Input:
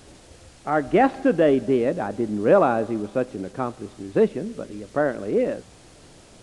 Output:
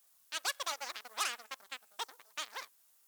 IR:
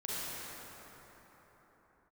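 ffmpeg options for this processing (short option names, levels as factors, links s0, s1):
-af "asetrate=92169,aresample=44100,aeval=exprs='0.531*(cos(1*acos(clip(val(0)/0.531,-1,1)))-cos(1*PI/2))+0.0531*(cos(7*acos(clip(val(0)/0.531,-1,1)))-cos(7*PI/2))+0.0531*(cos(8*acos(clip(val(0)/0.531,-1,1)))-cos(8*PI/2))':c=same,aderivative,volume=0.562"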